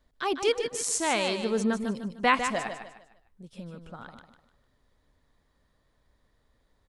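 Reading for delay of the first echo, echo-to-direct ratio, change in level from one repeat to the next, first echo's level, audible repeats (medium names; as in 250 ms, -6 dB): 151 ms, -7.5 dB, -9.5 dB, -8.0 dB, 3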